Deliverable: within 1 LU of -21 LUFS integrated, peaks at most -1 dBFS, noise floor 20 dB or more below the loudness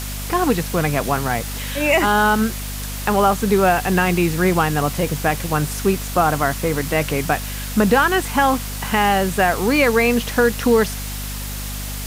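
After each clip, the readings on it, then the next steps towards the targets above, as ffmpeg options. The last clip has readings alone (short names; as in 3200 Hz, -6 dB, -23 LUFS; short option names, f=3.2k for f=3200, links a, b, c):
hum 50 Hz; harmonics up to 250 Hz; hum level -27 dBFS; noise floor -28 dBFS; noise floor target -39 dBFS; loudness -19.0 LUFS; peak -3.5 dBFS; loudness target -21.0 LUFS
-> -af "bandreject=f=50:t=h:w=6,bandreject=f=100:t=h:w=6,bandreject=f=150:t=h:w=6,bandreject=f=200:t=h:w=6,bandreject=f=250:t=h:w=6"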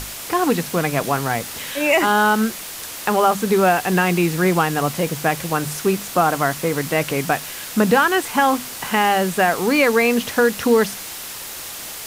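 hum none; noise floor -33 dBFS; noise floor target -39 dBFS
-> -af "afftdn=nr=6:nf=-33"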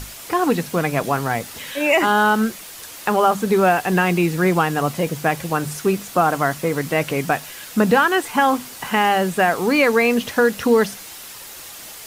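noise floor -37 dBFS; noise floor target -39 dBFS
-> -af "afftdn=nr=6:nf=-37"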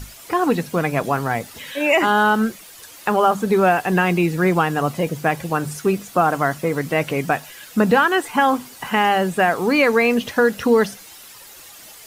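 noise floor -42 dBFS; loudness -19.0 LUFS; peak -4.0 dBFS; loudness target -21.0 LUFS
-> -af "volume=-2dB"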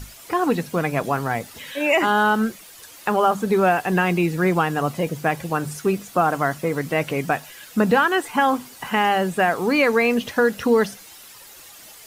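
loudness -21.0 LUFS; peak -6.0 dBFS; noise floor -44 dBFS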